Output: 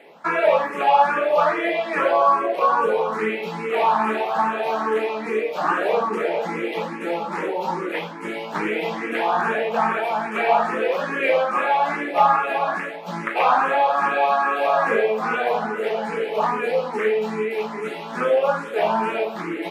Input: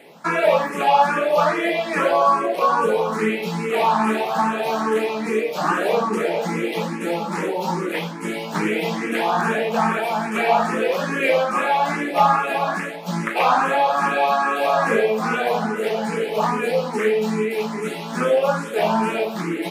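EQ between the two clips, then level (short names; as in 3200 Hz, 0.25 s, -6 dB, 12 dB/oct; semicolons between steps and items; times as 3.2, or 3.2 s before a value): tone controls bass -11 dB, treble -12 dB; 0.0 dB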